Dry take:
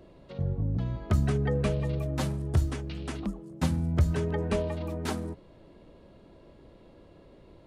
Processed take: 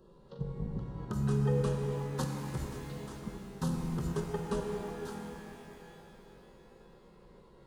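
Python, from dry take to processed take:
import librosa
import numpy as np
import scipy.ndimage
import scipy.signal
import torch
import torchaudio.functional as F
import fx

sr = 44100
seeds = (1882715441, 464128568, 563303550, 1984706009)

y = fx.level_steps(x, sr, step_db=14)
y = fx.fixed_phaser(y, sr, hz=440.0, stages=8)
y = fx.rev_shimmer(y, sr, seeds[0], rt60_s=3.3, semitones=12, shimmer_db=-8, drr_db=2.0)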